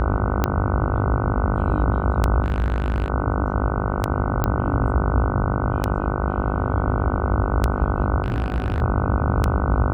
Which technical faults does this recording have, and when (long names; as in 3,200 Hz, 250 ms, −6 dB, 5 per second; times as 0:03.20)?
mains buzz 50 Hz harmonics 30 −25 dBFS
scratch tick 33 1/3 rpm −6 dBFS
0:02.44–0:03.10: clipping −17 dBFS
0:04.44: click −8 dBFS
0:08.22–0:08.82: clipping −18 dBFS